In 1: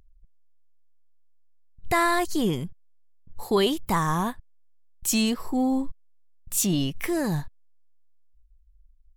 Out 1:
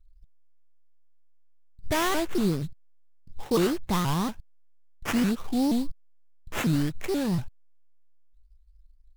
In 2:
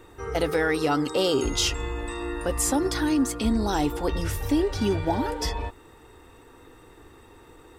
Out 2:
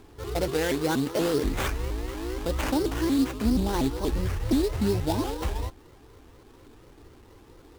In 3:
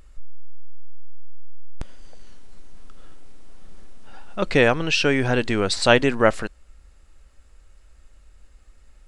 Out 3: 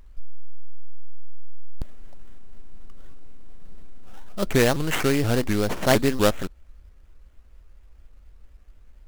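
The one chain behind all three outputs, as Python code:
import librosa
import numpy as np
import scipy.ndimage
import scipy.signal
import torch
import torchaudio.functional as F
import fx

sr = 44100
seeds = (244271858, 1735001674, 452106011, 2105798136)

y = fx.low_shelf(x, sr, hz=420.0, db=7.0)
y = fx.sample_hold(y, sr, seeds[0], rate_hz=4500.0, jitter_pct=20)
y = fx.vibrato_shape(y, sr, shape='saw_up', rate_hz=4.2, depth_cents=250.0)
y = F.gain(torch.from_numpy(y), -5.5).numpy()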